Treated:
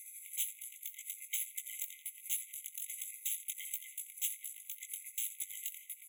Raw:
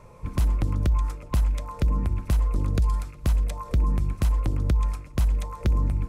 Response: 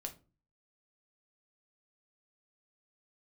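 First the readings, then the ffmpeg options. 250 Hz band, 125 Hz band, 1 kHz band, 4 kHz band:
under -40 dB, under -40 dB, under -40 dB, -3.0 dB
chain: -filter_complex "[0:a]acompressor=threshold=0.0224:ratio=2,bandreject=f=3000:w=5.3,asplit=2[s0][s1];[s1]adelay=86,lowpass=f=2600:p=1,volume=0.398,asplit=2[s2][s3];[s3]adelay=86,lowpass=f=2600:p=1,volume=0.45,asplit=2[s4][s5];[s5]adelay=86,lowpass=f=2600:p=1,volume=0.45,asplit=2[s6][s7];[s7]adelay=86,lowpass=f=2600:p=1,volume=0.45,asplit=2[s8][s9];[s9]adelay=86,lowpass=f=2600:p=1,volume=0.45[s10];[s0][s2][s4][s6][s8][s10]amix=inputs=6:normalize=0,aexciter=amount=13.5:drive=3:freq=9800,aeval=exprs='0.0211*(abs(mod(val(0)/0.0211+3,4)-2)-1)':c=same,flanger=delay=15.5:depth=6.6:speed=1.3,equalizer=f=2500:t=o:w=0.33:g=-8,equalizer=f=4000:t=o:w=0.33:g=-7,equalizer=f=8000:t=o:w=0.33:g=7,asoftclip=type=tanh:threshold=0.015,tremolo=f=12:d=0.47,equalizer=f=900:w=1:g=-15,afftfilt=real='re*eq(mod(floor(b*sr/1024/2000),2),1)':imag='im*eq(mod(floor(b*sr/1024/2000),2),1)':win_size=1024:overlap=0.75,volume=6.68"

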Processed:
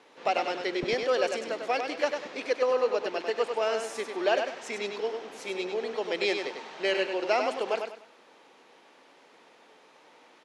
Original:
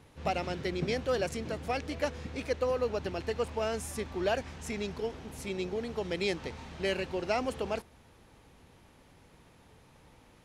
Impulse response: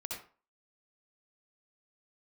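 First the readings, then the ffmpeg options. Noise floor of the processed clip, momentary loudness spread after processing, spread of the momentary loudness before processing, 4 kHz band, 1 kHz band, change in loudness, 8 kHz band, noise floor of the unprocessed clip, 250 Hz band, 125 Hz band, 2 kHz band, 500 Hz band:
-58 dBFS, 8 LU, 7 LU, +5.5 dB, +6.0 dB, +4.5 dB, +0.5 dB, -60 dBFS, -1.0 dB, under -10 dB, +6.0 dB, +5.0 dB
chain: -filter_complex "[0:a]lowpass=5900,acrossover=split=300|1400[s0][s1][s2];[s0]acrusher=bits=3:mix=0:aa=0.5[s3];[s3][s1][s2]amix=inputs=3:normalize=0,aecho=1:1:98|196|294|392:0.501|0.145|0.0421|0.0122,volume=1.78"

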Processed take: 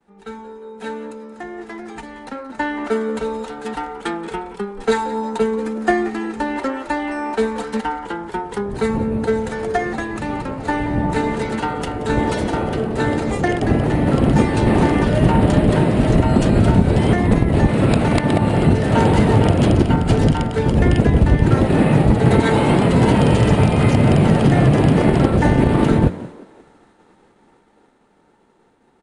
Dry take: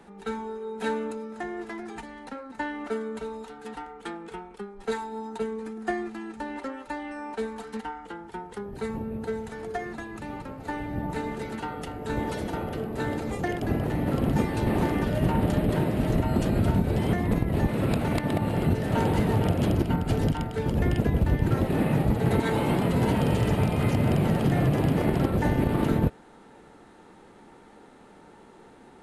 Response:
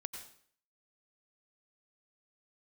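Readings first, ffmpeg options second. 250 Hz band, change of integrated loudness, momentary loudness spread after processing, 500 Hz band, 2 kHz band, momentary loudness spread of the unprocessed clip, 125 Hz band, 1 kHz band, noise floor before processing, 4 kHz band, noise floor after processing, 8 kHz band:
+10.0 dB, +10.0 dB, 15 LU, +10.5 dB, +10.5 dB, 14 LU, +9.5 dB, +10.5 dB, -52 dBFS, +10.0 dB, -56 dBFS, +9.5 dB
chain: -filter_complex "[0:a]agate=range=0.0224:threshold=0.00562:ratio=3:detection=peak,aresample=22050,aresample=44100,dynaudnorm=f=150:g=31:m=5.01,bandreject=f=88.74:t=h:w=4,bandreject=f=177.48:t=h:w=4,asplit=2[s0][s1];[s1]asplit=3[s2][s3][s4];[s2]adelay=177,afreqshift=71,volume=0.133[s5];[s3]adelay=354,afreqshift=142,volume=0.0479[s6];[s4]adelay=531,afreqshift=213,volume=0.0174[s7];[s5][s6][s7]amix=inputs=3:normalize=0[s8];[s0][s8]amix=inputs=2:normalize=0,volume=0.891"

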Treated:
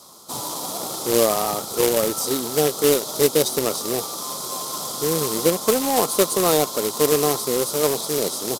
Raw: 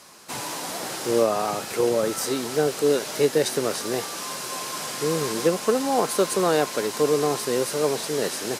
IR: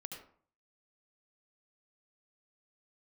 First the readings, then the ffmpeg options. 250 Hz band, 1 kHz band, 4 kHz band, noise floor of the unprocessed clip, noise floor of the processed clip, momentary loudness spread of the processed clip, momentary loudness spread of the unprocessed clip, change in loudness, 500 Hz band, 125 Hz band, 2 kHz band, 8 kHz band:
+2.0 dB, +2.0 dB, +4.5 dB, -34 dBFS, -32 dBFS, 9 LU, 8 LU, +3.0 dB, +2.0 dB, +2.5 dB, -1.0 dB, +6.0 dB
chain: -af "asuperstop=centerf=2100:order=20:qfactor=1.2,highshelf=f=5400:g=-11,acrusher=bits=2:mode=log:mix=0:aa=0.000001,aresample=32000,aresample=44100,aemphasis=mode=production:type=50kf,volume=1.19"

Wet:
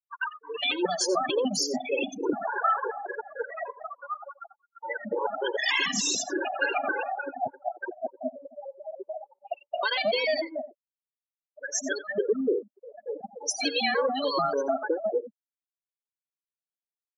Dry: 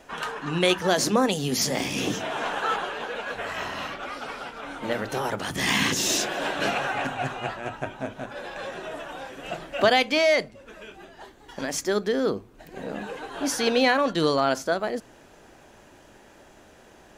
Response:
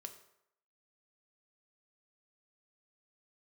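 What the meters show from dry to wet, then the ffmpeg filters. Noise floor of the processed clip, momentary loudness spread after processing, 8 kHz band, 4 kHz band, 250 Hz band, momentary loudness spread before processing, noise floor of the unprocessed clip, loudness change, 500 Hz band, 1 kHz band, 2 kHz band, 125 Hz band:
under -85 dBFS, 16 LU, -2.0 dB, -3.0 dB, -5.5 dB, 15 LU, -52 dBFS, -3.0 dB, -3.0 dB, -2.5 dB, -3.0 dB, under -15 dB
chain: -filter_complex "[0:a]bass=f=250:g=-9,treble=f=4000:g=6,asplit=2[s0][s1];[1:a]atrim=start_sample=2205,lowpass=6200,highshelf=f=4500:g=-5.5[s2];[s1][s2]afir=irnorm=-1:irlink=0,volume=0.335[s3];[s0][s3]amix=inputs=2:normalize=0,afftfilt=real='re*gte(hypot(re,im),0.126)':imag='im*gte(hypot(re,im),0.126)':win_size=1024:overlap=0.75,acrossover=split=670[s4][s5];[s4]adelay=220[s6];[s6][s5]amix=inputs=2:normalize=0,acompressor=threshold=0.0447:ratio=6,highpass=f=160:w=0.5412,highpass=f=160:w=1.3066,highshelf=f=8700:g=-7,asplit=2[s7][s8];[s8]aecho=0:1:89:0.168[s9];[s7][s9]amix=inputs=2:normalize=0,afftfilt=real='re*gt(sin(2*PI*3.4*pts/sr)*(1-2*mod(floor(b*sr/1024/280),2)),0)':imag='im*gt(sin(2*PI*3.4*pts/sr)*(1-2*mod(floor(b*sr/1024/280),2)),0)':win_size=1024:overlap=0.75,volume=2.37"

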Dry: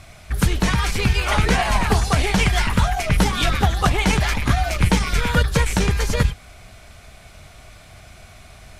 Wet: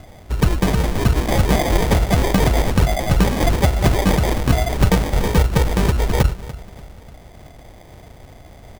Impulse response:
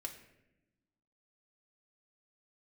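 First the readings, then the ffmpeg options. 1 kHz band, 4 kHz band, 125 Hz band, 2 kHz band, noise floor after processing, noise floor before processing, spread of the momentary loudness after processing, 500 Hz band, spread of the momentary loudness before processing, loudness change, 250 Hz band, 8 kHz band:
-0.5 dB, -3.0 dB, +2.5 dB, -4.0 dB, -43 dBFS, -45 dBFS, 3 LU, +5.0 dB, 3 LU, +1.5 dB, +3.5 dB, -1.5 dB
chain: -filter_complex "[0:a]asplit=2[s0][s1];[s1]adelay=291,lowpass=f=1700:p=1,volume=0.158,asplit=2[s2][s3];[s3]adelay=291,lowpass=f=1700:p=1,volume=0.42,asplit=2[s4][s5];[s5]adelay=291,lowpass=f=1700:p=1,volume=0.42,asplit=2[s6][s7];[s7]adelay=291,lowpass=f=1700:p=1,volume=0.42[s8];[s0][s2][s4][s6][s8]amix=inputs=5:normalize=0,acrusher=samples=32:mix=1:aa=0.000001,volume=1.26"

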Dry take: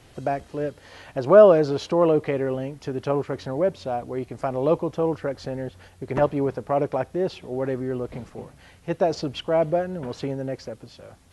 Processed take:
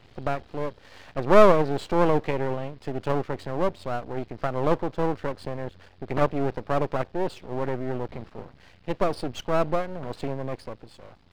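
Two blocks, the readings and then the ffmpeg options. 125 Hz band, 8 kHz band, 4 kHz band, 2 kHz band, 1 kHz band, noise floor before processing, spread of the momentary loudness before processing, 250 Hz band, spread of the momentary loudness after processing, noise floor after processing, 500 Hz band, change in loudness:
-1.0 dB, no reading, -1.5 dB, +2.0 dB, +1.0 dB, -52 dBFS, 14 LU, -2.0 dB, 14 LU, -54 dBFS, -4.0 dB, -3.0 dB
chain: -af "aresample=11025,aresample=44100,aeval=exprs='max(val(0),0)':c=same,volume=1.12"

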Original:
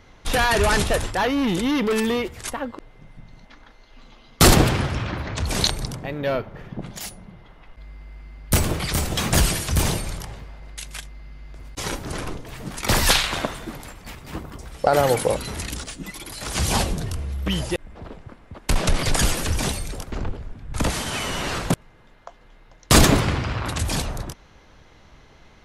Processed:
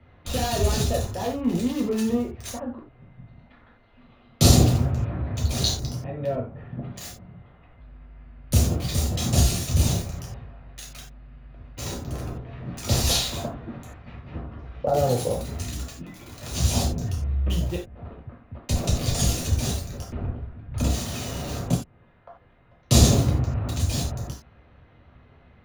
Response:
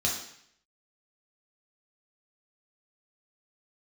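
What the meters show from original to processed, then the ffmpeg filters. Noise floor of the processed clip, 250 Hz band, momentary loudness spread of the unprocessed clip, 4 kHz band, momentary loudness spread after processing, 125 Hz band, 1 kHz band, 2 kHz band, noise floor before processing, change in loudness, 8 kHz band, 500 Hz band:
-56 dBFS, -2.0 dB, 18 LU, -4.0 dB, 19 LU, +2.0 dB, -8.0 dB, -13.0 dB, -51 dBFS, -2.5 dB, -2.5 dB, -4.0 dB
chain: -filter_complex "[0:a]acrossover=split=110|890|2900[s0][s1][s2][s3];[s2]acompressor=threshold=0.00631:ratio=6[s4];[s3]acrusher=bits=4:mix=0:aa=0.000001[s5];[s0][s1][s4][s5]amix=inputs=4:normalize=0[s6];[1:a]atrim=start_sample=2205,atrim=end_sample=4410[s7];[s6][s7]afir=irnorm=-1:irlink=0,volume=0.266"

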